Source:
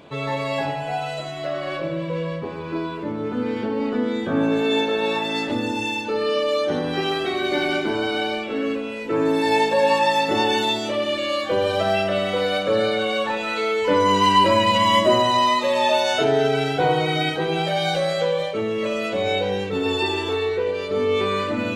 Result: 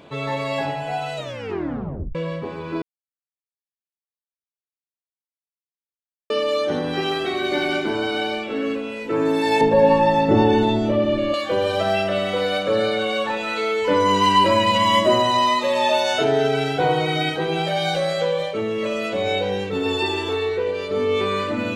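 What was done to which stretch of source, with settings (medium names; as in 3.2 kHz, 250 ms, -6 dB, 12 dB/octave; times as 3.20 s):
1.16 s: tape stop 0.99 s
2.82–6.30 s: mute
9.61–11.34 s: tilt EQ -4.5 dB/octave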